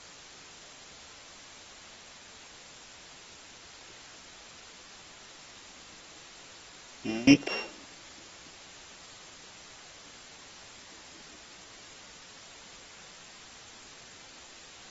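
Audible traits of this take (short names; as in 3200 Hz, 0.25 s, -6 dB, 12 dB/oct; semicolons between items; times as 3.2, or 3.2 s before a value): a buzz of ramps at a fixed pitch in blocks of 16 samples; tremolo saw down 1.1 Hz, depth 95%; a quantiser's noise floor 8-bit, dither triangular; AAC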